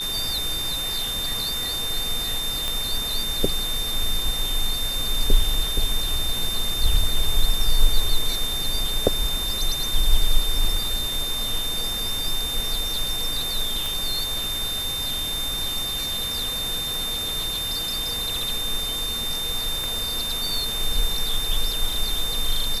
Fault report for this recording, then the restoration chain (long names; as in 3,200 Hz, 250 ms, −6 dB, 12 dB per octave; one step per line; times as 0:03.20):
whistle 3,600 Hz −26 dBFS
0:02.68: click
0:13.86: click
0:16.94: click
0:19.84: click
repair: click removal
notch filter 3,600 Hz, Q 30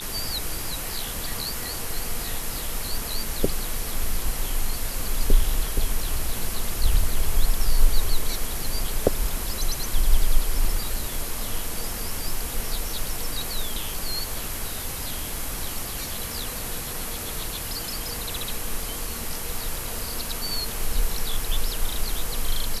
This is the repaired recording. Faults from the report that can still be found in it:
0:19.84: click